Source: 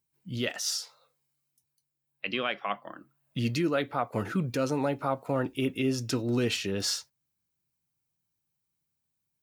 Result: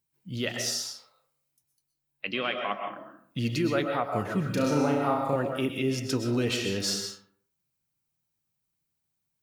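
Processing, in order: 4.43–5.36 s: flutter echo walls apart 5.9 m, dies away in 0.58 s; algorithmic reverb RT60 0.58 s, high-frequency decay 0.55×, pre-delay 85 ms, DRR 4 dB

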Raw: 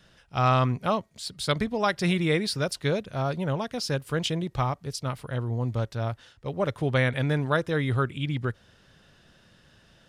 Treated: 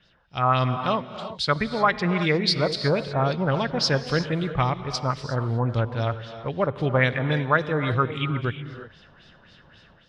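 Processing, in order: 3.42–4.24 s: companding laws mixed up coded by mu; LFO low-pass sine 3.7 Hz 970–4900 Hz; gated-style reverb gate 390 ms rising, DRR 10 dB; level rider gain up to 8.5 dB; trim -5 dB

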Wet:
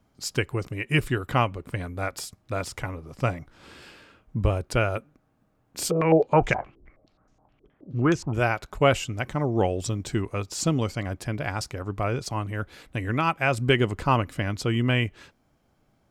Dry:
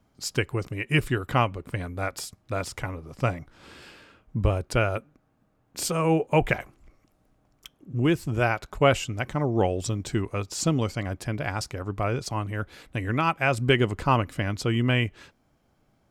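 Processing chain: 5.91–8.34 s: step-sequenced low-pass 9.5 Hz 410–6300 Hz

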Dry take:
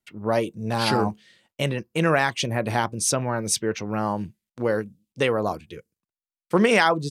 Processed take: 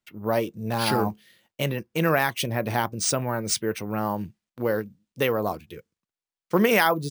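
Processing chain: sample-and-hold 3×; trim -1.5 dB

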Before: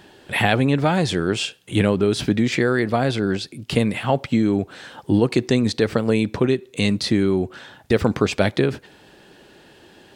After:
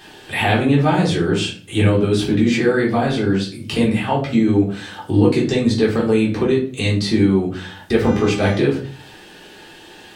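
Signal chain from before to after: 8.02–8.57 s: mains buzz 400 Hz, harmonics 18, -34 dBFS -6 dB/octave; simulated room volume 280 m³, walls furnished, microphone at 3.7 m; tape noise reduction on one side only encoder only; trim -5.5 dB

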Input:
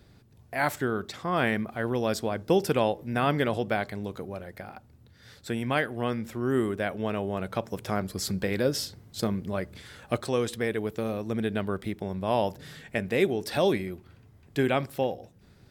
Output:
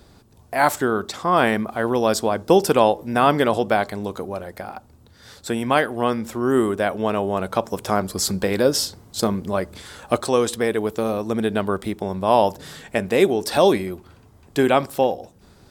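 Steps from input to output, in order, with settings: ten-band graphic EQ 125 Hz -7 dB, 1 kHz +5 dB, 2 kHz -5 dB, 8 kHz +4 dB; trim +8 dB

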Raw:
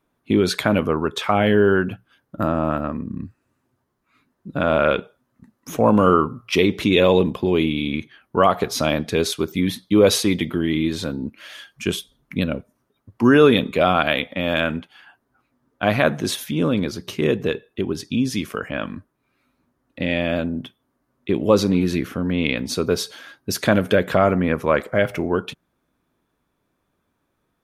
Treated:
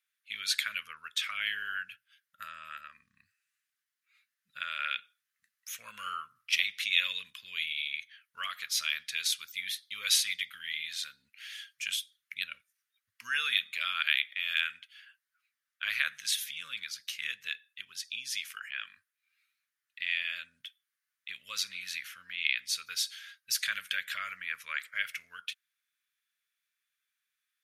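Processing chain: inverse Chebyshev high-pass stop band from 880 Hz, stop band 40 dB; trim -3.5 dB

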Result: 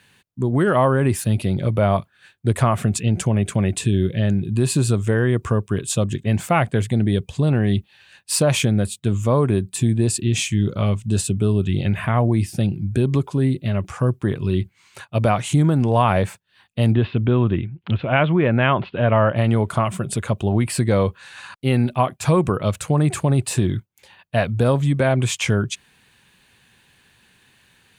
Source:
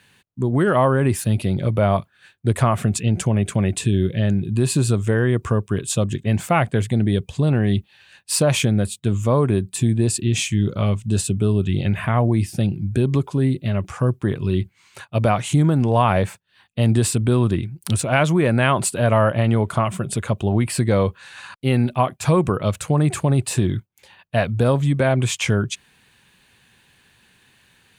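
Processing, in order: 16.92–19.36 s: steep low-pass 3.4 kHz 48 dB/octave

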